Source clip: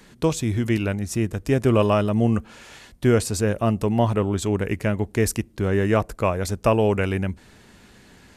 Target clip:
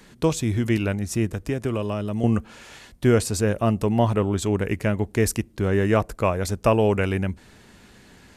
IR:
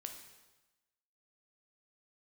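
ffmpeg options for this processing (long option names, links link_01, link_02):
-filter_complex "[0:a]asettb=1/sr,asplit=3[link_01][link_02][link_03];[link_01]atrim=end=1.304[link_04];[link_02]atrim=start=1.3:end=2.24,asetpts=PTS-STARTPTS,afade=type=in:duration=0.004:curve=qsin,afade=type=out:start_time=0.936:duration=0.004:curve=qsin,acrossover=split=470|2600[link_05][link_06][link_07];[link_05]acompressor=threshold=-25dB:ratio=4[link_08];[link_06]acompressor=threshold=-33dB:ratio=4[link_09];[link_07]acompressor=threshold=-44dB:ratio=4[link_10];[link_08][link_09][link_10]amix=inputs=3:normalize=0[link_11];[link_03]atrim=start=2.236[link_12];[link_04][link_11]acrossfade=duration=0.004:curve1=hsin:curve2=qsin[link_13];[link_13][link_12]acrossfade=duration=0.004:curve1=qsin:curve2=hsin"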